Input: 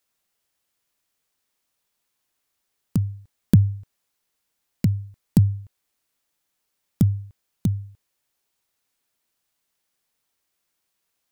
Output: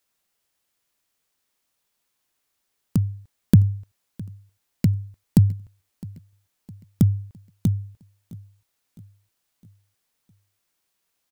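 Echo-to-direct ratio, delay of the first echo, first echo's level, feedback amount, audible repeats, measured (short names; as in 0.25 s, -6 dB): -20.5 dB, 0.66 s, -21.5 dB, 50%, 3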